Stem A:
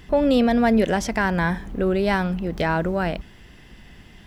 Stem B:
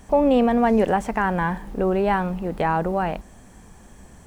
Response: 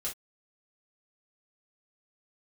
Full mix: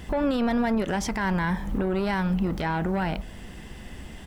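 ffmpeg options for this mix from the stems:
-filter_complex "[0:a]volume=2.5dB[link_01];[1:a]equalizer=frequency=3300:width=0.47:gain=-12,alimiter=limit=-15.5dB:level=0:latency=1,aeval=exprs='0.168*sin(PI/2*2*val(0)/0.168)':channel_layout=same,adelay=1.4,volume=-9dB,asplit=2[link_02][link_03];[link_03]volume=-7dB[link_04];[2:a]atrim=start_sample=2205[link_05];[link_04][link_05]afir=irnorm=-1:irlink=0[link_06];[link_01][link_02][link_06]amix=inputs=3:normalize=0,alimiter=limit=-17.5dB:level=0:latency=1:release=192"

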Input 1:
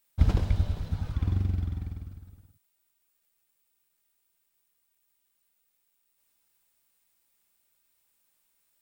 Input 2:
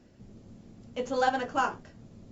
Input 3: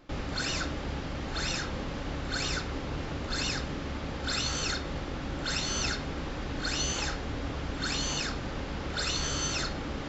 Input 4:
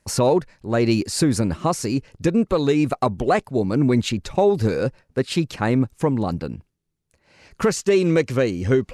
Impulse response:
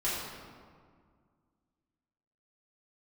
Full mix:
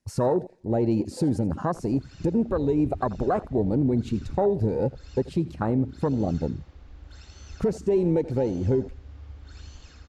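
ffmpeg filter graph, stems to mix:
-filter_complex "[0:a]adelay=2350,volume=-16dB[link_01];[1:a]equalizer=frequency=5500:width_type=o:width=1.8:gain=11.5,volume=-14.5dB[link_02];[2:a]adelay=1650,volume=-12.5dB,asplit=2[link_03][link_04];[link_04]volume=-3.5dB[link_05];[3:a]volume=-5.5dB,asplit=2[link_06][link_07];[link_07]volume=-17.5dB[link_08];[link_05][link_08]amix=inputs=2:normalize=0,aecho=0:1:83|166|249|332|415|498:1|0.43|0.185|0.0795|0.0342|0.0147[link_09];[link_01][link_02][link_03][link_06][link_09]amix=inputs=5:normalize=0,acontrast=57,afwtdn=0.0891,alimiter=limit=-14.5dB:level=0:latency=1:release=370"

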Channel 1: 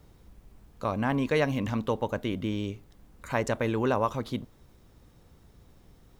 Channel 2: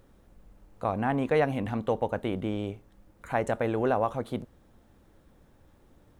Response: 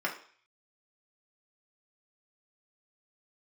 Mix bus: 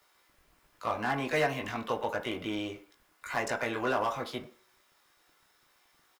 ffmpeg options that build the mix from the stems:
-filter_complex "[0:a]highpass=1200,flanger=delay=18.5:depth=2.5:speed=0.33,asoftclip=type=hard:threshold=-34.5dB,volume=2.5dB,asplit=2[link_01][link_02];[link_02]volume=-9.5dB[link_03];[1:a]aeval=exprs='sgn(val(0))*max(abs(val(0))-0.002,0)':channel_layout=same,adelay=18,volume=-9.5dB,asplit=2[link_04][link_05];[link_05]volume=-5.5dB[link_06];[2:a]atrim=start_sample=2205[link_07];[link_03][link_06]amix=inputs=2:normalize=0[link_08];[link_08][link_07]afir=irnorm=-1:irlink=0[link_09];[link_01][link_04][link_09]amix=inputs=3:normalize=0"

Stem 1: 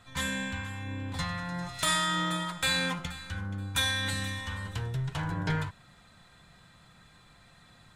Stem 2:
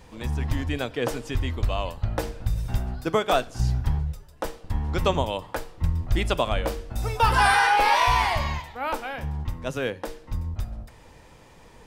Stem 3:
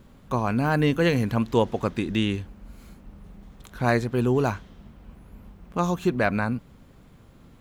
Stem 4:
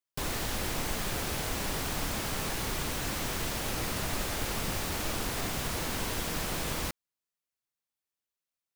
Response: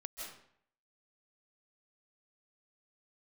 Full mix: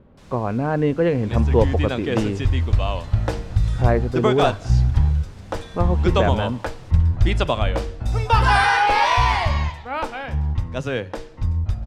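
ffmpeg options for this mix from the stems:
-filter_complex "[0:a]acompressor=threshold=-37dB:ratio=6,adelay=1850,volume=-6.5dB[link_01];[1:a]adelay=1100,volume=2dB,asplit=2[link_02][link_03];[link_03]volume=-23.5dB[link_04];[2:a]lowpass=2600,equalizer=frequency=500:width=0.83:gain=9,volume=-4.5dB,asplit=2[link_05][link_06];[3:a]volume=-16.5dB[link_07];[link_06]apad=whole_len=432202[link_08];[link_01][link_08]sidechaincompress=threshold=-28dB:ratio=8:attack=16:release=1030[link_09];[4:a]atrim=start_sample=2205[link_10];[link_04][link_10]afir=irnorm=-1:irlink=0[link_11];[link_09][link_02][link_05][link_07][link_11]amix=inputs=5:normalize=0,lowpass=6800,equalizer=frequency=89:width_type=o:width=1.6:gain=7"

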